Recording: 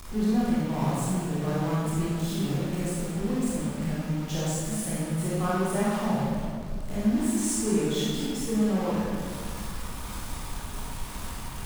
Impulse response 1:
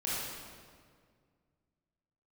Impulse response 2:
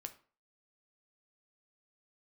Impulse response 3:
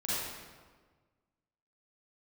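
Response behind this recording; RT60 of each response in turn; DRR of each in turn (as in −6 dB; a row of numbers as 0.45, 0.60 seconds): 1; 2.0, 0.40, 1.5 seconds; −8.5, 7.0, −10.0 decibels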